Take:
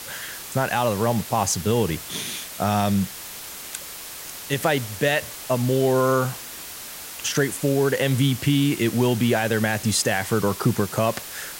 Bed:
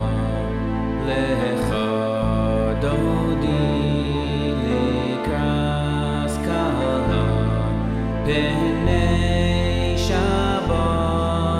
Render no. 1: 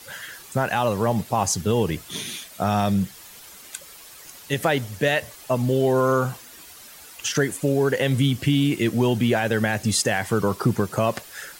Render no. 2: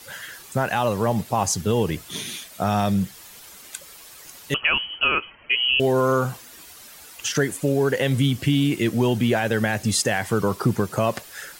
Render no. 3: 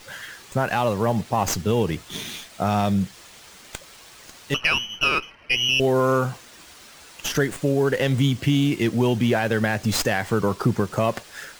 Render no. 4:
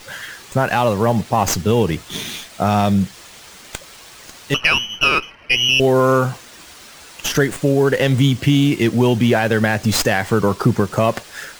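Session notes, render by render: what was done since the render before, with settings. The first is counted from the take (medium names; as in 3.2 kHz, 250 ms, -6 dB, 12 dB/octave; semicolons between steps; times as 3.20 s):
noise reduction 10 dB, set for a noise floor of -37 dBFS
4.54–5.80 s: frequency inversion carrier 3.1 kHz
sliding maximum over 3 samples
trim +5.5 dB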